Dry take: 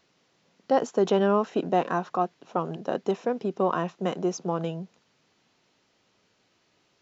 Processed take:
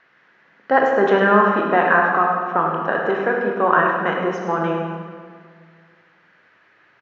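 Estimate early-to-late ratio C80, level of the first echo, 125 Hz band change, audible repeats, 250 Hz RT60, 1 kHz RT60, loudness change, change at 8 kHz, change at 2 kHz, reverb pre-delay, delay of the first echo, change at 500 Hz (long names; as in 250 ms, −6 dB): 3.0 dB, −10.0 dB, +4.5 dB, 1, 2.2 s, 1.8 s, +9.0 dB, can't be measured, +21.0 dB, 16 ms, 103 ms, +7.0 dB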